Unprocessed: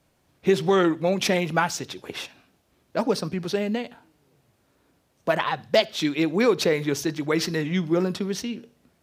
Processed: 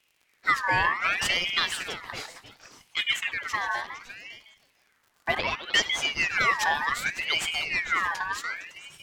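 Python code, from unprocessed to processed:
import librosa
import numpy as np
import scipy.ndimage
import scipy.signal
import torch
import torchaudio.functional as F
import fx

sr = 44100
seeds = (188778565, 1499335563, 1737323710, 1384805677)

y = fx.echo_stepped(x, sr, ms=153, hz=540.0, octaves=1.4, feedback_pct=70, wet_db=-5)
y = fx.dmg_crackle(y, sr, seeds[0], per_s=86.0, level_db=-45.0)
y = y + 10.0 ** (-14.5 / 20.0) * np.pad(y, (int(558 * sr / 1000.0), 0))[:len(y)]
y = fx.ring_lfo(y, sr, carrier_hz=2000.0, swing_pct=35, hz=0.67)
y = y * 10.0 ** (-1.5 / 20.0)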